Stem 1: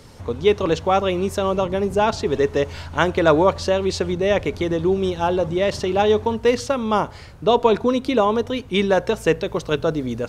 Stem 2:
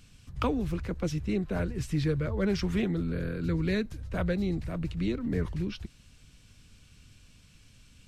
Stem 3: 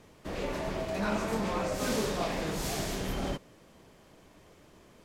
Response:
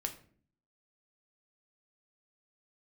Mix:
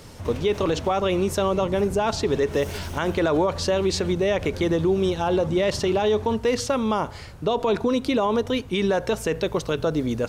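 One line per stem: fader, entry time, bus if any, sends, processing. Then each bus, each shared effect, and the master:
+0.5 dB, 0.00 s, no send, dry
-7.0 dB, 0.25 s, no send, detuned doubles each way 43 cents
0.77 s -1 dB -> 1.2 s -10 dB -> 2.26 s -10 dB -> 2.57 s -1 dB, 0.00 s, no send, minimum comb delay 0.34 ms; negative-ratio compressor -40 dBFS, ratio -1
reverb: off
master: high shelf 7500 Hz +4 dB; limiter -13.5 dBFS, peak gain reduction 11 dB

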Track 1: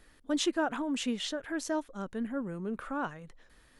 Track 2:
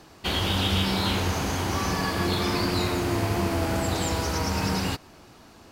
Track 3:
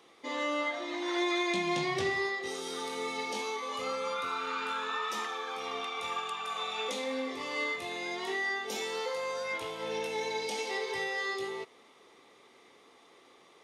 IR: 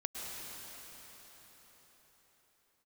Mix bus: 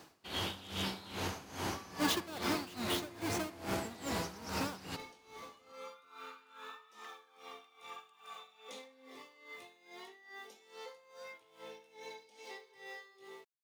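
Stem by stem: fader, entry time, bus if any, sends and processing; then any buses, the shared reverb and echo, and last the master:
-4.0 dB, 1.70 s, no bus, no send, half-waves squared off
-4.0 dB, 0.00 s, bus A, no send, wavefolder -18 dBFS
-11.5 dB, 1.80 s, bus A, no send, dry
bus A: 0.0 dB, sample gate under -58.5 dBFS; compressor 4:1, threshold -30 dBFS, peak gain reduction 5 dB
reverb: off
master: HPF 190 Hz 6 dB/oct; dB-linear tremolo 2.4 Hz, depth 18 dB

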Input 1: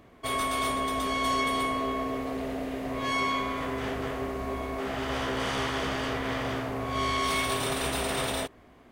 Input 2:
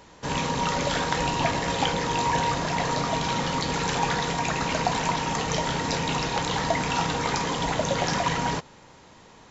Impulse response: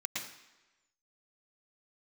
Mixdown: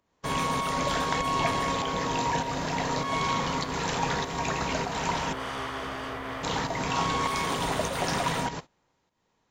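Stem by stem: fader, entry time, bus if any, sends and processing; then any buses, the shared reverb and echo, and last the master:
-6.5 dB, 0.00 s, no send, bell 1100 Hz +5.5 dB 1.2 oct
-3.5 dB, 0.00 s, muted 5.33–6.43, no send, pump 99 bpm, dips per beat 1, -10 dB, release 0.248 s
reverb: off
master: gate -40 dBFS, range -19 dB

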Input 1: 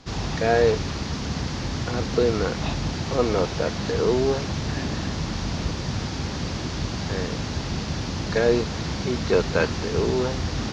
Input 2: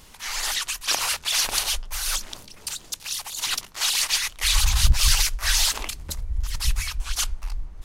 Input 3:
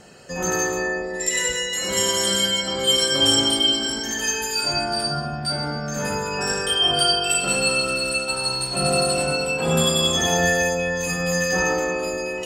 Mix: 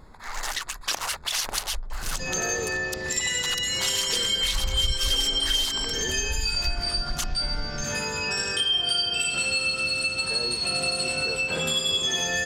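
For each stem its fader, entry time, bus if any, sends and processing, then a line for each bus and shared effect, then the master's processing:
-10.5 dB, 1.95 s, no send, dry
+3.0 dB, 0.00 s, no send, Wiener smoothing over 15 samples; notch 2400 Hz, Q 17
-5.5 dB, 1.90 s, no send, weighting filter D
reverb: off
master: compressor 3:1, threshold -25 dBFS, peak gain reduction 14 dB

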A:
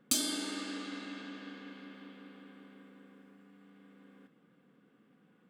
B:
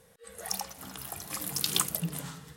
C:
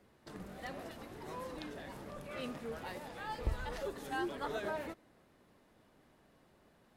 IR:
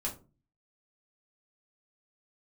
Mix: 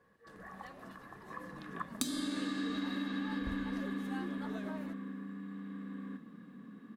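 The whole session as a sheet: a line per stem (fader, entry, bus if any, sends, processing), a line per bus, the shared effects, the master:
+1.5 dB, 1.90 s, bus A, no send, dry
-12.5 dB, 0.00 s, bus A, no send, elliptic band-pass 110–1700 Hz; tilt +2.5 dB/oct
-8.5 dB, 0.00 s, no bus, no send, dry
bus A: 0.0 dB, small resonant body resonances 220/1100/1700/3800 Hz, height 17 dB, ringing for 30 ms; compressor 10:1, threshold -33 dBFS, peak gain reduction 17 dB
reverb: off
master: dry

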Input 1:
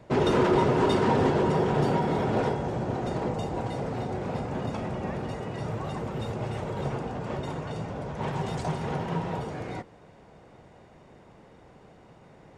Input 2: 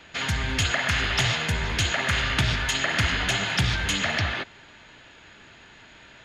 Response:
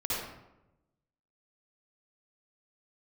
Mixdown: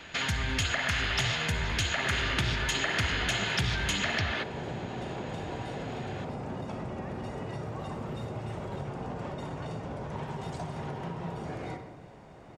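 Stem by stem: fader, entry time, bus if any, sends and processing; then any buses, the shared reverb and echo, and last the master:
-0.5 dB, 1.95 s, send -11.5 dB, notch 480 Hz, Q 12; compressor, threshold -35 dBFS, peak gain reduction 15.5 dB
+2.0 dB, 0.00 s, send -23 dB, dry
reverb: on, RT60 0.95 s, pre-delay 51 ms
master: compressor 2:1, threshold -32 dBFS, peak gain reduction 9 dB

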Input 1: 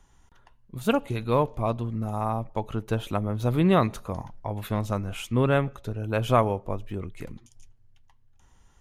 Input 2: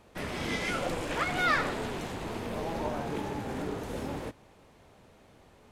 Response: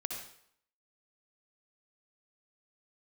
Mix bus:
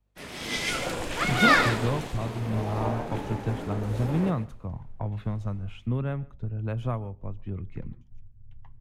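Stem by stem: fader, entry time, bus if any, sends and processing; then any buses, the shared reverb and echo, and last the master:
-10.0 dB, 0.55 s, no send, echo send -21 dB, low-pass opened by the level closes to 1900 Hz, open at -20.5 dBFS; tone controls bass +10 dB, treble -1 dB; three-band squash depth 100%
+0.5 dB, 0.00 s, no send, echo send -8 dB, dry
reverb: off
echo: echo 0.142 s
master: hum 50 Hz, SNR 22 dB; three-band expander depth 100%

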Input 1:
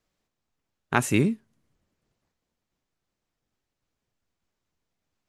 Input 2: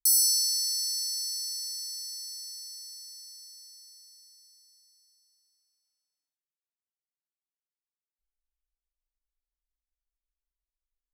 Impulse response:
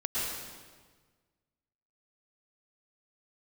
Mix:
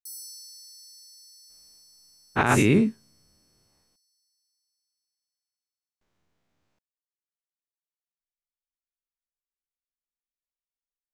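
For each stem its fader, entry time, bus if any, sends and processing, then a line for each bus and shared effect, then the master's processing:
+2.5 dB, 1.50 s, muted 3.96–6.01, no send, spectral dilation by 0.12 s; high shelf 4700 Hz -9 dB
-19.0 dB, 0.00 s, no send, dry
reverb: off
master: limiter -9.5 dBFS, peak gain reduction 10.5 dB

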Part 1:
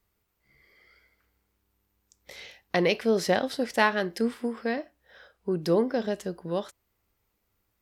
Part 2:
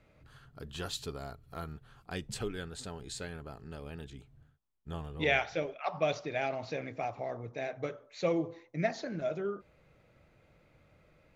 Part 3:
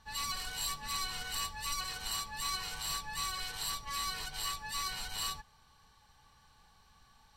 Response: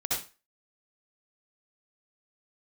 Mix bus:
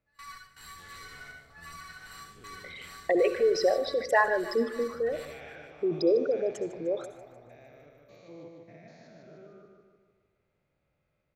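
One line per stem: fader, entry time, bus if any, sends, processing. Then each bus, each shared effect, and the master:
-1.0 dB, 0.35 s, send -19.5 dB, echo send -15 dB, formant sharpening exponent 3
-18.0 dB, 0.00 s, no send, echo send -3.5 dB, stepped spectrum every 0.2 s; AGC gain up to 4 dB
-19.0 dB, 0.00 s, send -6 dB, echo send -10 dB, band shelf 1600 Hz +13 dB 1.1 oct; step gate ".x.xxxx.xxxx.x" 80 bpm -24 dB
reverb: on, RT60 0.30 s, pre-delay 57 ms
echo: feedback echo 0.151 s, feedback 53%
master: dry

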